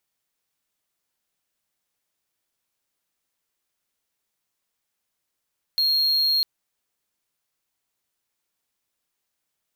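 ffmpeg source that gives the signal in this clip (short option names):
-f lavfi -i "aevalsrc='0.158*(1-4*abs(mod(4250*t+0.25,1)-0.5))':d=0.65:s=44100"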